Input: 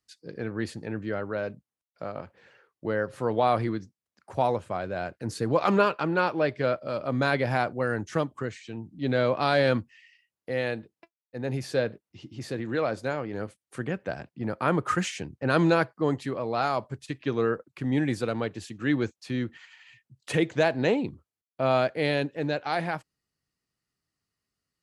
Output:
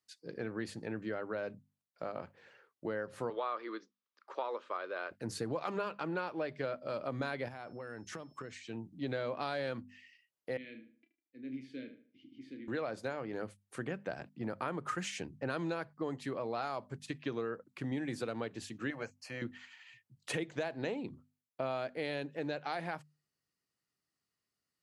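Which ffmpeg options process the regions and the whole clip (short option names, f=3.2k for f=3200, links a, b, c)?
-filter_complex "[0:a]asettb=1/sr,asplit=3[a][b][c];[a]atrim=end=3.304[d];[b]atrim=start=3.3:end=5.11,asetpts=PTS-STARTPTS,afade=t=in:d=0.004:c=qsin,afade=t=out:st=1.806:d=0.004:c=qsin,acrossover=split=3400[e][f];[f]acompressor=threshold=-54dB:ratio=4:attack=1:release=60[g];[e][g]amix=inputs=2:normalize=0,highpass=f=360:w=0.5412,highpass=f=360:w=1.3066,equalizer=f=720:t=q:w=4:g=-10,equalizer=f=1.2k:t=q:w=4:g=9,equalizer=f=3.5k:t=q:w=4:g=4,lowpass=f=5.4k:w=0.5412,lowpass=f=5.4k:w=1.3066[h];[c]atrim=start=5.106[i];[d][h]acrossfade=d=0.004:c1=hsin:c2=qsin[j];[j][i]acrossfade=d=0.004:c1=qsin:c2=hsin,asettb=1/sr,asplit=3[k][l][m];[k]atrim=end=7.484[n];[l]atrim=start=7.48:end=8.54,asetpts=PTS-STARTPTS,afade=t=in:d=0.004:c=qsin,afade=t=out:st=1.056:d=0.004:c=qsin,acompressor=threshold=-35dB:ratio=16:attack=3.2:release=140:knee=1:detection=peak,aeval=exprs='val(0)+0.000398*sin(2*PI*5300*n/s)':c=same[o];[m]atrim=start=8.536[p];[n][o]acrossfade=d=0.004:c1=hsin:c2=qsin[q];[q][p]acrossfade=d=0.004:c1=qsin:c2=hsin,asettb=1/sr,asplit=3[r][s][t];[r]atrim=end=10.574[u];[s]atrim=start=10.57:end=12.68,asetpts=PTS-STARTPTS,afade=t=in:d=0.004:c=qsin,afade=t=out:st=2.106:d=0.004:c=qsin,asplit=3[v][w][x];[v]bandpass=f=270:t=q:w=8,volume=0dB[y];[w]bandpass=f=2.29k:t=q:w=8,volume=-6dB[z];[x]bandpass=f=3.01k:t=q:w=8,volume=-9dB[aa];[y][z][aa]amix=inputs=3:normalize=0,asplit=2[ab][ac];[ac]adelay=31,volume=-9dB[ad];[ab][ad]amix=inputs=2:normalize=0,atrim=end_sample=93051,asplit=2[ae][af];[af]adelay=76,lowpass=f=3.2k:p=1,volume=-10.5dB,asplit=2[ag][ah];[ah]adelay=76,lowpass=f=3.2k:p=1,volume=0.34,asplit=2[ai][aj];[aj]adelay=76,lowpass=f=3.2k:p=1,volume=0.34,asplit=2[ak][al];[al]adelay=76,lowpass=f=3.2k:p=1,volume=0.34[am];[ae][ag][ai][ak][am]amix=inputs=5:normalize=0,atrim=end_sample=93051[an];[t]atrim=start=12.676[ao];[u][an]acrossfade=d=0.004:c1=hsin:c2=qsin[ap];[ap][ao]acrossfade=d=0.004:c1=qsin:c2=hsin,asettb=1/sr,asplit=3[aq][ar][as];[aq]atrim=end=18.904[at];[ar]atrim=start=18.9:end=19.42,asetpts=PTS-STARTPTS,afade=t=in:d=0.004:c=qsin,afade=t=out:st=0.516:d=0.004:c=qsin,asuperstop=centerf=3600:order=4:qfactor=2.9,lowshelf=f=450:t=q:w=3:g=-8[au];[as]atrim=start=19.416[av];[at][au]acrossfade=d=0.004:c1=hsin:c2=qsin[aw];[aw][av]acrossfade=d=0.004:c1=qsin:c2=hsin,highpass=f=140:p=1,bandreject=f=50:t=h:w=6,bandreject=f=100:t=h:w=6,bandreject=f=150:t=h:w=6,bandreject=f=200:t=h:w=6,bandreject=f=250:t=h:w=6,acompressor=threshold=-30dB:ratio=6,volume=-3.5dB"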